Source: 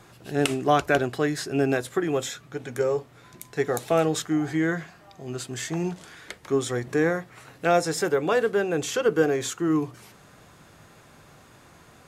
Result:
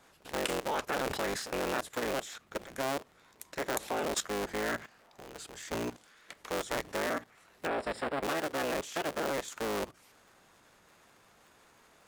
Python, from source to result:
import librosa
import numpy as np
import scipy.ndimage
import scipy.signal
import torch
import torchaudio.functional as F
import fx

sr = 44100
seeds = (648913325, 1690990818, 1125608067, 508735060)

y = fx.cycle_switch(x, sr, every=3, mode='inverted')
y = fx.moving_average(y, sr, points=7, at=(7.67, 8.22), fade=0.02)
y = fx.level_steps(y, sr, step_db=15)
y = fx.low_shelf(y, sr, hz=230.0, db=-11.5)
y = fx.sustainer(y, sr, db_per_s=62.0, at=(0.88, 1.62))